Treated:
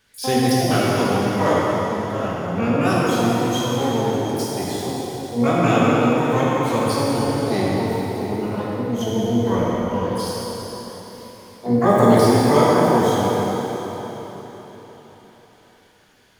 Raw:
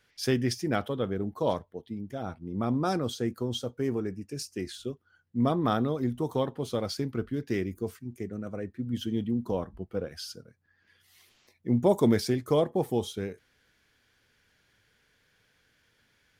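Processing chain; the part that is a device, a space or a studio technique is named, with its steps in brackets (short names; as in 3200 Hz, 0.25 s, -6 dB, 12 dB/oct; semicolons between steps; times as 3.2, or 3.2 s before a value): shimmer-style reverb (harmoniser +12 st -4 dB; reverb RT60 4.3 s, pre-delay 4 ms, DRR -6.5 dB); gain +2.5 dB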